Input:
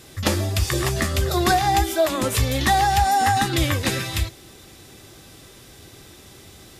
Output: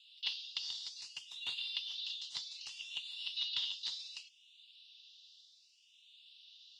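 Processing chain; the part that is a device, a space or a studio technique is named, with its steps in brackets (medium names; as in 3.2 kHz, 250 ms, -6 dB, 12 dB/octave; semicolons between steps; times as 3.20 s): Chebyshev high-pass 2.8 kHz, order 8; 0.96–1.73 s: peaking EQ 11 kHz +4.5 dB 0.74 oct; barber-pole phaser into a guitar amplifier (barber-pole phaser +0.65 Hz; saturation -19.5 dBFS, distortion -21 dB; cabinet simulation 84–3600 Hz, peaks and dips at 120 Hz +7 dB, 240 Hz -5 dB, 550 Hz -8 dB, 960 Hz +9 dB, 2.1 kHz +4 dB, 3.2 kHz -8 dB); trim +3 dB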